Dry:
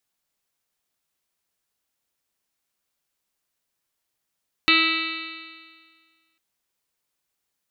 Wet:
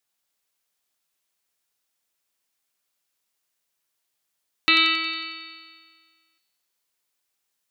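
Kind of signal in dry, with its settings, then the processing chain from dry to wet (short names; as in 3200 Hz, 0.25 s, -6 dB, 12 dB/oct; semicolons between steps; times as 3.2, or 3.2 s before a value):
stretched partials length 1.70 s, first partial 323 Hz, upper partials -20/-18.5/1/-16/0/2/5/-1.5/-13.5/2.5/0.5/-8.5 dB, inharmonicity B 0.00073, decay 1.73 s, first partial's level -23 dB
low shelf 250 Hz -7 dB; on a send: thin delay 91 ms, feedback 60%, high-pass 2200 Hz, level -3.5 dB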